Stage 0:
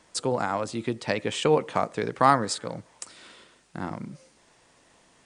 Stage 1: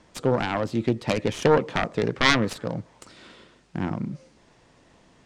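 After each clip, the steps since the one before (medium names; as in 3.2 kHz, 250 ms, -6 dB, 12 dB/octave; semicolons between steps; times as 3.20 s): self-modulated delay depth 0.76 ms; low-pass 6.3 kHz 12 dB/octave; bass shelf 400 Hz +9.5 dB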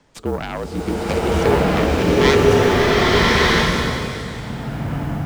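frequency shift -48 Hz; modulation noise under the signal 30 dB; swelling reverb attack 1240 ms, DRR -9.5 dB; trim -1 dB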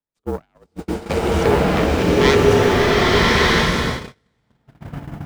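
gate -21 dBFS, range -38 dB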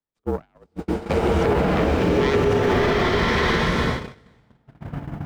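peak limiter -10 dBFS, peak gain reduction 8.5 dB; reverse; upward compressor, threshold -38 dBFS; reverse; treble shelf 3.9 kHz -9.5 dB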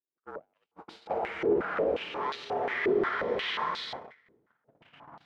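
step-sequenced band-pass 5.6 Hz 370–4000 Hz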